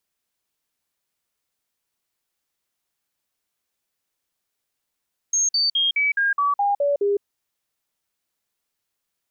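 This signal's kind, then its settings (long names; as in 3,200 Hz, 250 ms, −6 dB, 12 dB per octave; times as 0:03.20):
stepped sweep 6,470 Hz down, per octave 2, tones 9, 0.16 s, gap 0.05 s −17 dBFS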